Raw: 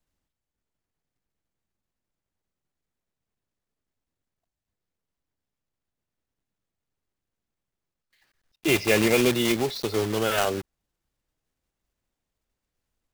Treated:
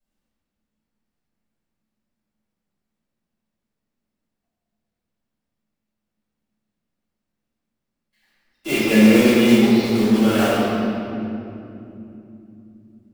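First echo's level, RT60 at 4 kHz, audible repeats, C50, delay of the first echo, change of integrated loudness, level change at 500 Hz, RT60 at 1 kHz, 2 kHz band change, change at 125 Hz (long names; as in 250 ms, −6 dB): no echo audible, 1.8 s, no echo audible, −4.0 dB, no echo audible, +7.0 dB, +5.0 dB, 2.5 s, +4.0 dB, +7.0 dB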